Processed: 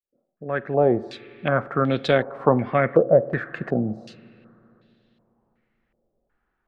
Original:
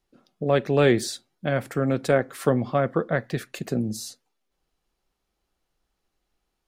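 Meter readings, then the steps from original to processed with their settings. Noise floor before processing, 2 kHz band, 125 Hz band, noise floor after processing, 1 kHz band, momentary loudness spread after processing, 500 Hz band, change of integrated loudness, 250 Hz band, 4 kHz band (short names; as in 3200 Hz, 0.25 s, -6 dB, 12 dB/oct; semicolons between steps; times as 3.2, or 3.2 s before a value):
-79 dBFS, +2.0 dB, 0.0 dB, -76 dBFS, +4.5 dB, 11 LU, +3.0 dB, +2.5 dB, +0.5 dB, -2.0 dB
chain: opening faded in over 1.44 s; spring tank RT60 3.4 s, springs 39/51 ms, chirp 55 ms, DRR 18 dB; stepped low-pass 2.7 Hz 570–3500 Hz; gain +1 dB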